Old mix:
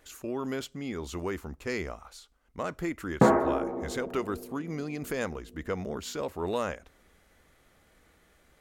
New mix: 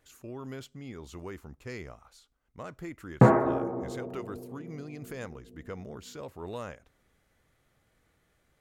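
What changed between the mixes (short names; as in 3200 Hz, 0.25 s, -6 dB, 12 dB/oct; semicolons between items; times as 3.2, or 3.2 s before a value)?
speech -8.5 dB; master: add bell 120 Hz +12 dB 0.48 oct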